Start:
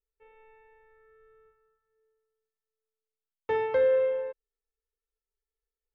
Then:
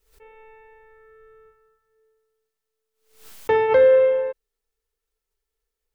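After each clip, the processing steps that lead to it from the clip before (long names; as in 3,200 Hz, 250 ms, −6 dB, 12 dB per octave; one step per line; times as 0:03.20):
background raised ahead of every attack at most 110 dB per second
level +9 dB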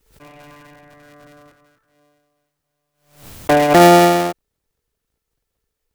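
sub-harmonics by changed cycles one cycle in 3, inverted
level +5.5 dB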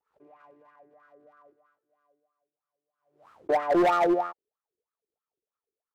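LFO wah 3.1 Hz 350–1,300 Hz, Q 7.5
gain into a clipping stage and back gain 18.5 dB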